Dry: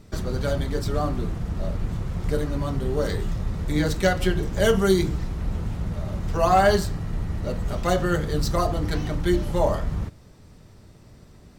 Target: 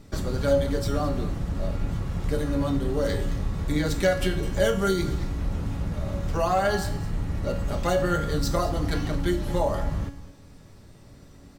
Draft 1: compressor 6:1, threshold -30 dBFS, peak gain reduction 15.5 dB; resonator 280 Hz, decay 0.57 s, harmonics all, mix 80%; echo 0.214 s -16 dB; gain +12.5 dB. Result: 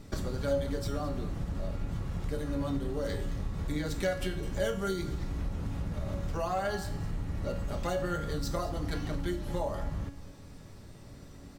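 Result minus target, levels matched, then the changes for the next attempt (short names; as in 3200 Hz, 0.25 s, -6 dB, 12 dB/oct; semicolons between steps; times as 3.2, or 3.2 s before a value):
compressor: peak gain reduction +8.5 dB
change: compressor 6:1, threshold -19.5 dBFS, peak gain reduction 7 dB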